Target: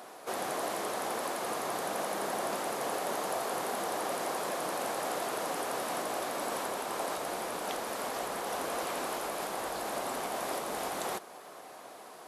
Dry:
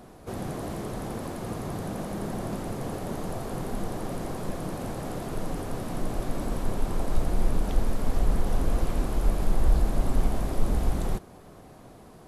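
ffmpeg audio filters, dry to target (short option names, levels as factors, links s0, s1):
-filter_complex "[0:a]asplit=2[s0][s1];[s1]alimiter=limit=0.119:level=0:latency=1:release=379,volume=1.12[s2];[s0][s2]amix=inputs=2:normalize=0,highpass=630"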